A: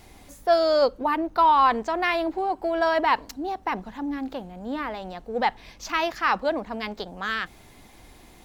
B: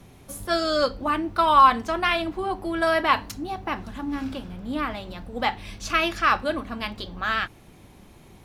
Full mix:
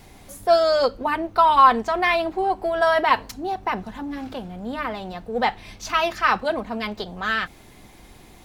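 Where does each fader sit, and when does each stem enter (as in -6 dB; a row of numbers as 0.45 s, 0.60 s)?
+1.5 dB, -4.0 dB; 0.00 s, 0.00 s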